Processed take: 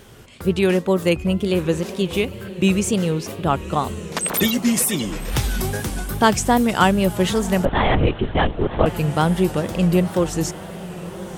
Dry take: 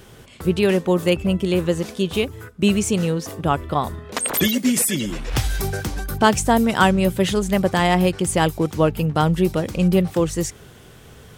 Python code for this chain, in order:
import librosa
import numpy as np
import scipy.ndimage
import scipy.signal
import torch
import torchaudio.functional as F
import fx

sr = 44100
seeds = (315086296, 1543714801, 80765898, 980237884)

y = fx.echo_diffused(x, sr, ms=1062, feedback_pct=59, wet_db=-15)
y = fx.wow_flutter(y, sr, seeds[0], rate_hz=2.1, depth_cents=96.0)
y = fx.lpc_vocoder(y, sr, seeds[1], excitation='whisper', order=10, at=(7.65, 8.86))